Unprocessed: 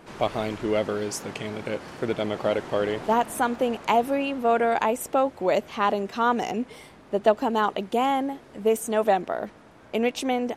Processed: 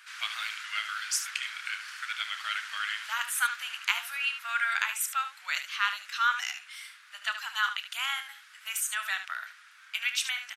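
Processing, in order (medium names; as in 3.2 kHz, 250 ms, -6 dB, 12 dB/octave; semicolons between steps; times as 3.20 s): elliptic high-pass 1.4 kHz, stop band 70 dB; on a send: early reflections 29 ms -12.5 dB, 74 ms -10 dB; on the sum: trim +4.5 dB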